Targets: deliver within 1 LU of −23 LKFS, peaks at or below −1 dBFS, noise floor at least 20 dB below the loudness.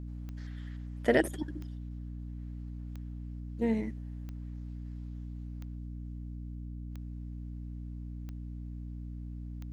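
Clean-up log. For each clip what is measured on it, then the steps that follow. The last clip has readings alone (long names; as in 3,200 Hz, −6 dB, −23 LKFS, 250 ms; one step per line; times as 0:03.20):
number of clicks 8; mains hum 60 Hz; hum harmonics up to 300 Hz; level of the hum −38 dBFS; integrated loudness −38.5 LKFS; sample peak −11.5 dBFS; target loudness −23.0 LKFS
→ click removal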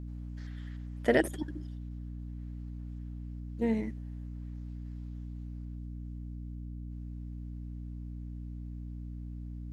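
number of clicks 0; mains hum 60 Hz; hum harmonics up to 300 Hz; level of the hum −38 dBFS
→ mains-hum notches 60/120/180/240/300 Hz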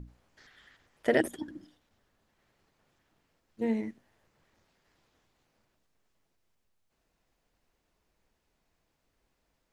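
mains hum none found; integrated loudness −32.0 LKFS; sample peak −11.0 dBFS; target loudness −23.0 LKFS
→ level +9 dB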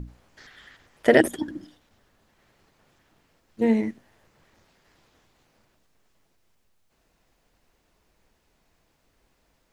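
integrated loudness −23.0 LKFS; sample peak −2.0 dBFS; background noise floor −69 dBFS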